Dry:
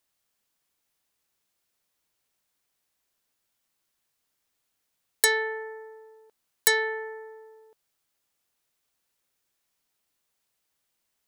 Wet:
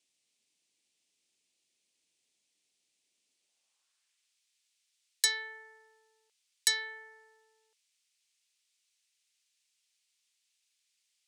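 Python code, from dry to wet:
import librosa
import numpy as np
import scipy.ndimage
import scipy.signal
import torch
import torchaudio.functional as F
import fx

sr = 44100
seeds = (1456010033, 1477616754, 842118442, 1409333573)

y = fx.filter_sweep_bandpass(x, sr, from_hz=300.0, to_hz=4900.0, start_s=3.31, end_s=4.42, q=1.2)
y = fx.dmg_noise_band(y, sr, seeds[0], low_hz=2200.0, high_hz=9400.0, level_db=-80.0)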